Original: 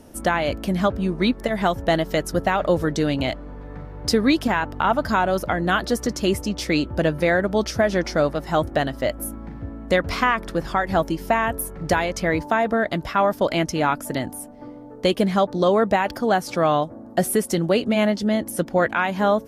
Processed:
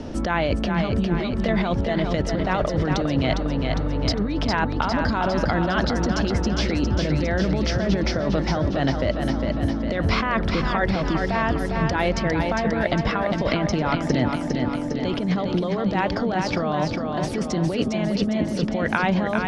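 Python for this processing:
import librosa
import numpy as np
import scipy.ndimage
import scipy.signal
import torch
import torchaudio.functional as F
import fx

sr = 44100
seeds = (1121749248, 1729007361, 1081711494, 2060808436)

y = scipy.signal.sosfilt(scipy.signal.butter(4, 5200.0, 'lowpass', fs=sr, output='sos'), x)
y = fx.low_shelf(y, sr, hz=360.0, db=5.0)
y = fx.over_compress(y, sr, threshold_db=-23.0, ratio=-1.0)
y = fx.echo_feedback(y, sr, ms=405, feedback_pct=55, wet_db=-5.5)
y = fx.band_squash(y, sr, depth_pct=40)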